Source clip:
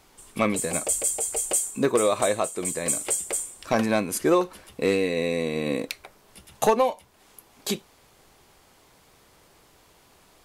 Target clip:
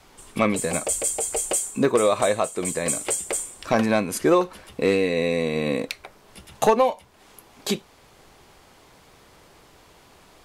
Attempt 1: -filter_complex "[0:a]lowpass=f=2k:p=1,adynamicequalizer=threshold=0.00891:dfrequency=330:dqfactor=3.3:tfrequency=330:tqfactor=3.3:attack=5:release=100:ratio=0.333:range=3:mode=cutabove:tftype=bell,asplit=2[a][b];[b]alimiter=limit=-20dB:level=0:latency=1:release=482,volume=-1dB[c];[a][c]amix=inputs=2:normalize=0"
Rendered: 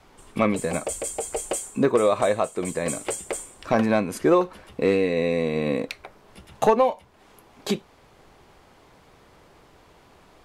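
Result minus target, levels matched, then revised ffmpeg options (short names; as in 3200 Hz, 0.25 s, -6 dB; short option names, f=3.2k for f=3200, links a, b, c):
8000 Hz band -6.0 dB
-filter_complex "[0:a]lowpass=f=5.9k:p=1,adynamicequalizer=threshold=0.00891:dfrequency=330:dqfactor=3.3:tfrequency=330:tqfactor=3.3:attack=5:release=100:ratio=0.333:range=3:mode=cutabove:tftype=bell,asplit=2[a][b];[b]alimiter=limit=-20dB:level=0:latency=1:release=482,volume=-1dB[c];[a][c]amix=inputs=2:normalize=0"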